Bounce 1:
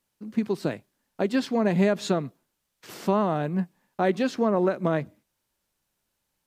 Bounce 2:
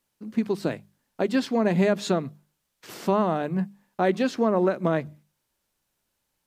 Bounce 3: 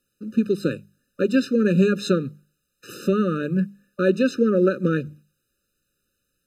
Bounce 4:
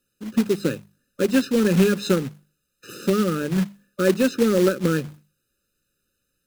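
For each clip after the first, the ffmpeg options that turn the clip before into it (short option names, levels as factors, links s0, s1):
-af "bandreject=f=50:t=h:w=6,bandreject=f=100:t=h:w=6,bandreject=f=150:t=h:w=6,bandreject=f=200:t=h:w=6,volume=1.12"
-af "afftfilt=real='re*eq(mod(floor(b*sr/1024/600),2),0)':imag='im*eq(mod(floor(b*sr/1024/600),2),0)':win_size=1024:overlap=0.75,volume=1.68"
-af "acrusher=bits=3:mode=log:mix=0:aa=0.000001"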